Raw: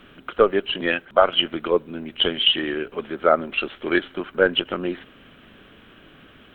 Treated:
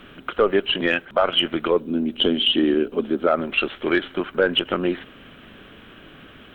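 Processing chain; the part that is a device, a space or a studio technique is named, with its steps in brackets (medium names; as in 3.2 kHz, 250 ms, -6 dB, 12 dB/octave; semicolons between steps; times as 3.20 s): 1.80–3.27 s: graphic EQ 125/250/1000/2000 Hz -5/+9/-4/-9 dB; soft clipper into limiter (saturation -3.5 dBFS, distortion -23 dB; peak limiter -12.5 dBFS, peak gain reduction 7 dB); trim +4 dB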